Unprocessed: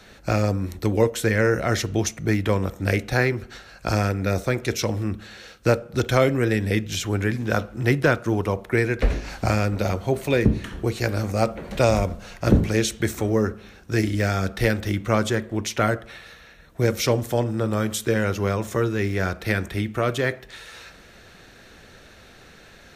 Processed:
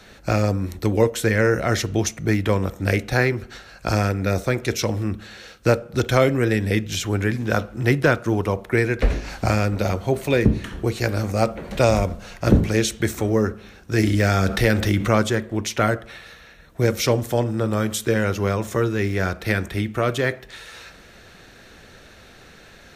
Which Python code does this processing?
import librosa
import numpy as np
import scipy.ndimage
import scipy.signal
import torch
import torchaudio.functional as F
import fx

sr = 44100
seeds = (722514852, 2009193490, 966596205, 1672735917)

y = fx.env_flatten(x, sr, amount_pct=50, at=(13.98, 15.22))
y = y * 10.0 ** (1.5 / 20.0)